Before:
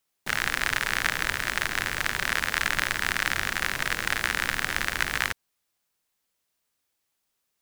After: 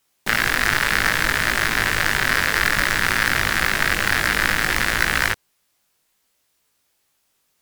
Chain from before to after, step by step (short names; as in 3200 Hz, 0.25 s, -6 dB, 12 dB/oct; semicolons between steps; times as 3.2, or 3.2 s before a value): sine folder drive 7 dB, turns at -4 dBFS; chorus 0.6 Hz, delay 18 ms, depth 2.1 ms; gain +2.5 dB